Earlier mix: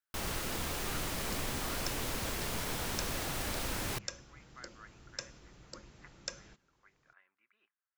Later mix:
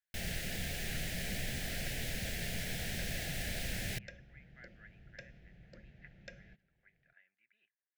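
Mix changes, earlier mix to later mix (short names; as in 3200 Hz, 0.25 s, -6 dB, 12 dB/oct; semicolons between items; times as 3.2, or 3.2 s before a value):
second sound: add LPF 2100 Hz 12 dB/oct; master: add EQ curve 120 Hz 0 dB, 180 Hz +3 dB, 300 Hz -10 dB, 700 Hz -3 dB, 1100 Hz -29 dB, 1700 Hz +2 dB, 6100 Hz -4 dB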